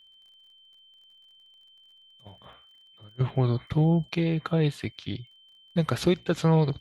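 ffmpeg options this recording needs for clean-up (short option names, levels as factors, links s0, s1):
-af "adeclick=t=4,bandreject=f=3100:w=30"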